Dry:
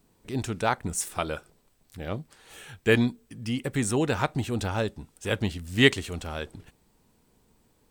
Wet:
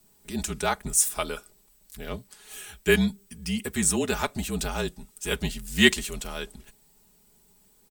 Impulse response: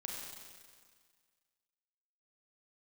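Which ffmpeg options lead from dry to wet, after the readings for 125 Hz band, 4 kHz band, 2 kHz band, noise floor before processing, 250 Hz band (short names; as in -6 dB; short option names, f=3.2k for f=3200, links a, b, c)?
-4.5 dB, +3.0 dB, +1.5 dB, -66 dBFS, 0.0 dB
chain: -af "afreqshift=-42,aecho=1:1:4.8:0.63,crystalizer=i=2.5:c=0,volume=-3dB"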